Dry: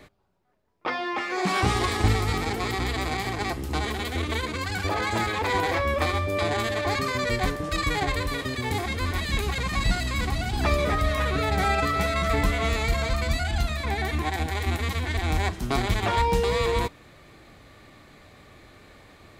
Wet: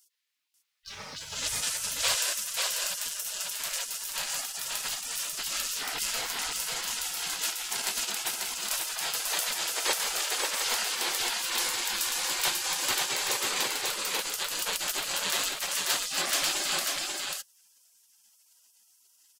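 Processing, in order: spectral gate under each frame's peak -30 dB weak; sample leveller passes 1; on a send: echo 0.541 s -3 dB; on the sum: gain +8.5 dB

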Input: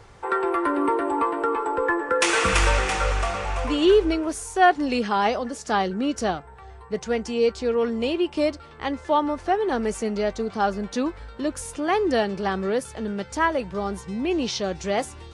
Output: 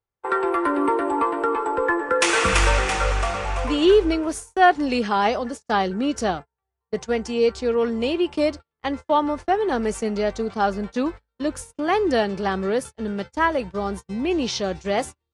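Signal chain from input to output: gate -32 dBFS, range -42 dB; gain +1.5 dB

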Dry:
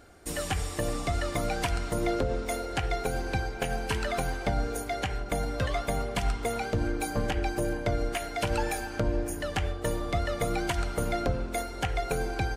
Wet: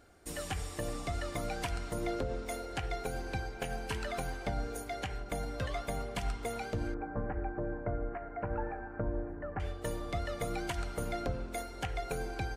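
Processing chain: 6.94–9.6 inverse Chebyshev low-pass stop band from 3300 Hz, stop band 40 dB; gain -7 dB

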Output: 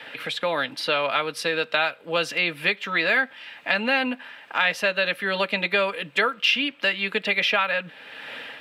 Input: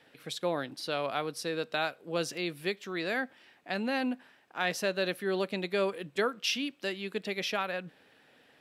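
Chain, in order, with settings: EQ curve 390 Hz 0 dB, 2800 Hz +6 dB, 6000 Hz -8 dB; AGC gain up to 13.5 dB; low shelf 430 Hz -10 dB; notch comb 370 Hz; three-band squash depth 70%; gain -1 dB

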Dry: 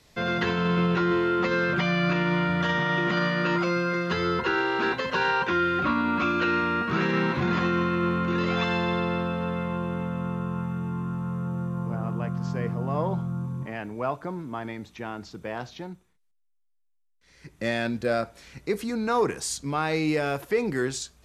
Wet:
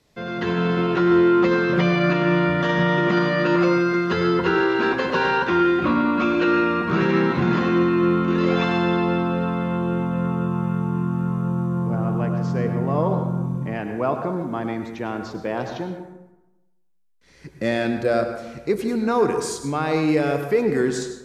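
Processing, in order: bell 320 Hz +6 dB 2.7 oct; AGC gain up to 10.5 dB; on a send: reverb RT60 1.0 s, pre-delay 88 ms, DRR 6 dB; on the sum: gain -7.5 dB

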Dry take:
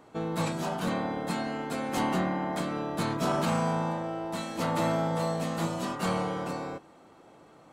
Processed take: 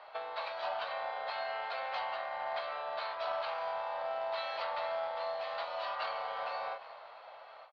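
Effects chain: frequency-shifting echo 0.35 s, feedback 41%, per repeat -74 Hz, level -21.5 dB; in parallel at -6.5 dB: soft clip -34.5 dBFS, distortion -7 dB; on the sum: compressor 16:1, threshold -33 dBFS, peak gain reduction 11 dB; elliptic high-pass 600 Hz, stop band 60 dB; short-mantissa float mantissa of 2-bit; Chebyshev low-pass 4500 Hz, order 5; on a send at -21 dB: reverb, pre-delay 3 ms; on the sum: ending taper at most 170 dB/s; gain +4 dB

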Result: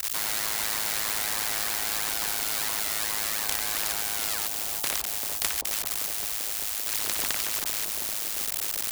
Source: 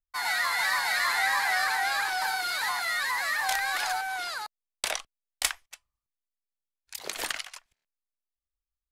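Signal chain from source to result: switching spikes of -25 dBFS; ring modulator 53 Hz; on a send: analogue delay 0.391 s, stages 2048, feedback 66%, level -11.5 dB; on the sum: spectral compressor 4:1

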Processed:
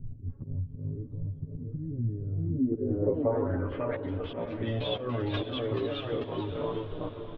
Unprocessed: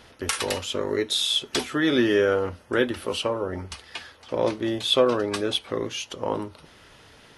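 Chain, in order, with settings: tilt -3.5 dB/oct; in parallel at -3 dB: limiter -15.5 dBFS, peak gain reduction 10.5 dB; on the sum: low-pass opened by the level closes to 540 Hz, open at -10.5 dBFS; comb 7.3 ms, depth 77%; echoes that change speed 0.729 s, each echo +1 st, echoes 2, each echo -6 dB; auto swell 0.304 s; chorus voices 4, 0.34 Hz, delay 11 ms, depth 2.5 ms; compressor 3:1, threshold -32 dBFS, peak gain reduction 14.5 dB; low-pass sweep 150 Hz -> 3100 Hz, 2.39–4.01; on a send: diffused feedback echo 0.605 s, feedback 50%, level -11 dB

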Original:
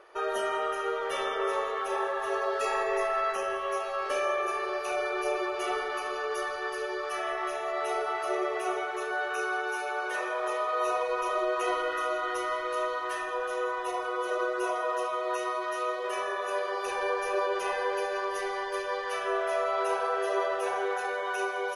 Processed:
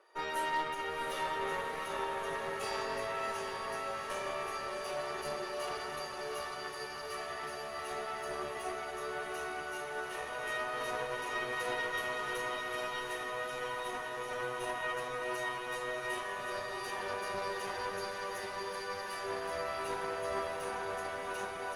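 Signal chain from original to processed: steep high-pass 170 Hz; high shelf 7100 Hz +7 dB; resonator 930 Hz, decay 0.3 s, mix 90%; added harmonics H 4 -12 dB, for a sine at -32 dBFS; diffused feedback echo 0.728 s, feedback 68%, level -4.5 dB; gain +7.5 dB

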